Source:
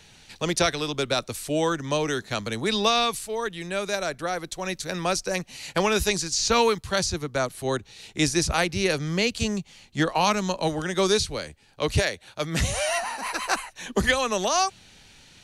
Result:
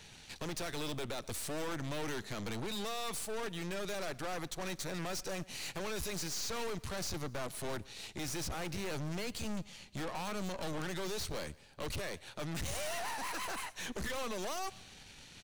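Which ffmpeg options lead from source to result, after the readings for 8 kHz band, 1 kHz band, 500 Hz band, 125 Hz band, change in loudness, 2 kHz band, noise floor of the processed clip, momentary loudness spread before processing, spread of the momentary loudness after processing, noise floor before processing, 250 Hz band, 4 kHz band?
−12.5 dB, −15.5 dB, −15.0 dB, −12.0 dB, −14.0 dB, −14.5 dB, −56 dBFS, 8 LU, 5 LU, −54 dBFS, −13.5 dB, −14.5 dB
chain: -filter_complex "[0:a]alimiter=limit=-19.5dB:level=0:latency=1:release=73,aeval=exprs='(tanh(89.1*val(0)+0.75)-tanh(0.75))/89.1':channel_layout=same,asplit=2[link_01][link_02];[link_02]aecho=0:1:118|236|354:0.0708|0.0354|0.0177[link_03];[link_01][link_03]amix=inputs=2:normalize=0,volume=1.5dB"

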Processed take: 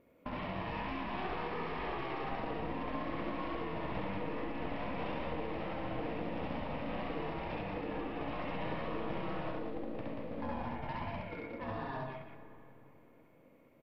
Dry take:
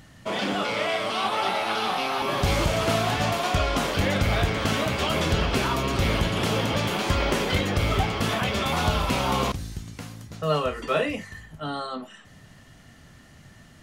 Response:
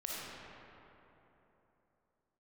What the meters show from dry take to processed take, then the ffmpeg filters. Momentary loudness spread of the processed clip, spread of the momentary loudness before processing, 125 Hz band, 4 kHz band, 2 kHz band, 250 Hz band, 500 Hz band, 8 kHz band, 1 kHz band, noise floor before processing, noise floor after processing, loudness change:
4 LU, 10 LU, −17.5 dB, −23.0 dB, −16.0 dB, −11.0 dB, −13.0 dB, below −40 dB, −13.0 dB, −51 dBFS, −62 dBFS, −15.0 dB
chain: -filter_complex "[0:a]aeval=exprs='val(0)*sin(2*PI*390*n/s)':channel_layout=same,agate=range=-15dB:threshold=-47dB:ratio=16:detection=peak,lowpass=frequency=2400:width=0.5412,lowpass=frequency=2400:width=1.3066,equalizer=frequency=1500:width=3.4:gain=-11,acompressor=threshold=-39dB:ratio=8,aresample=11025,aeval=exprs='clip(val(0),-1,0.01)':channel_layout=same,aresample=44100,aecho=1:1:67.06|183.7:0.891|0.631,asplit=2[link_01][link_02];[1:a]atrim=start_sample=2205,adelay=129[link_03];[link_02][link_03]afir=irnorm=-1:irlink=0,volume=-14.5dB[link_04];[link_01][link_04]amix=inputs=2:normalize=0,volume=1dB" -ar 48000 -c:a mp2 -b:a 192k

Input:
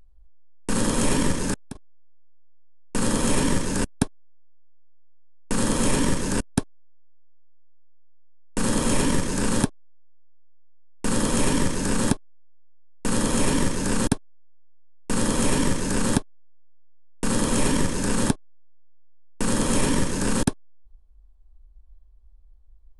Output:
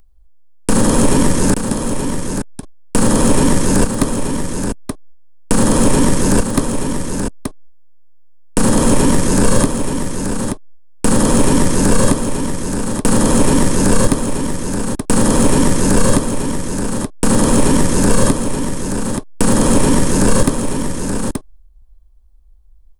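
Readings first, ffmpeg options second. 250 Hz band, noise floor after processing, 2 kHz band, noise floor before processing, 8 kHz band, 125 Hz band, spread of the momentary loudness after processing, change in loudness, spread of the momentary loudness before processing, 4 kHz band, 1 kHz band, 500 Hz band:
+11.0 dB, −44 dBFS, +7.0 dB, −50 dBFS, +9.5 dB, +11.0 dB, 9 LU, +8.5 dB, 7 LU, +6.0 dB, +10.0 dB, +11.5 dB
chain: -filter_complex "[0:a]agate=range=-12dB:threshold=-41dB:ratio=16:detection=peak,highshelf=frequency=5800:gain=9.5,acrossover=split=1300|7500[link_01][link_02][link_03];[link_01]acompressor=threshold=-21dB:ratio=4[link_04];[link_02]acompressor=threshold=-42dB:ratio=4[link_05];[link_03]acompressor=threshold=-40dB:ratio=4[link_06];[link_04][link_05][link_06]amix=inputs=3:normalize=0,aeval=exprs='0.335*sin(PI/2*2*val(0)/0.335)':channel_layout=same,asplit=2[link_07][link_08];[link_08]aecho=0:1:878:0.447[link_09];[link_07][link_09]amix=inputs=2:normalize=0,volume=5dB"

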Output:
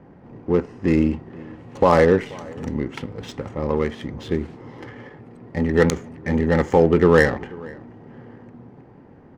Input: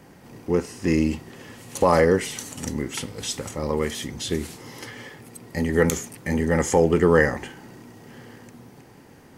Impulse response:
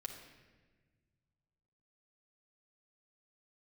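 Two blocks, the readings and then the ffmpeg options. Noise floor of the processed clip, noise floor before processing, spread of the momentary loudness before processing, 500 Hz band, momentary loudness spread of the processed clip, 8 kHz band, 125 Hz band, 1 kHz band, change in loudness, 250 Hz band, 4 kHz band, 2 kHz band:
−47 dBFS, −49 dBFS, 20 LU, +3.0 dB, 22 LU, −11.0 dB, +3.0 dB, +2.5 dB, +3.0 dB, +3.0 dB, −4.5 dB, +1.5 dB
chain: -filter_complex "[0:a]adynamicsmooth=sensitivity=1.5:basefreq=1300,asplit=2[link_01][link_02];[link_02]adelay=484,volume=-22dB,highshelf=frequency=4000:gain=-10.9[link_03];[link_01][link_03]amix=inputs=2:normalize=0,volume=3dB"

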